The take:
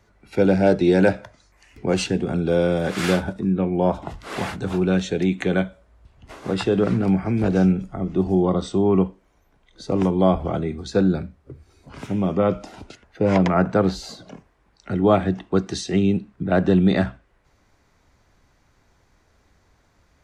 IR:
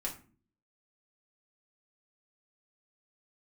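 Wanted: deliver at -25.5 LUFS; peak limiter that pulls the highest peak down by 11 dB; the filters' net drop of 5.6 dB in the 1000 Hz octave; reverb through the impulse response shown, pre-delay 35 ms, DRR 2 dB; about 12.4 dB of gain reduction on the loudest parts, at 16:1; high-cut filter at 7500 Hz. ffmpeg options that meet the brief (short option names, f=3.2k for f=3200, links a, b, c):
-filter_complex "[0:a]lowpass=7.5k,equalizer=f=1k:t=o:g=-8.5,acompressor=threshold=-25dB:ratio=16,alimiter=level_in=0.5dB:limit=-24dB:level=0:latency=1,volume=-0.5dB,asplit=2[a][b];[1:a]atrim=start_sample=2205,adelay=35[c];[b][c]afir=irnorm=-1:irlink=0,volume=-3.5dB[d];[a][d]amix=inputs=2:normalize=0,volume=7dB"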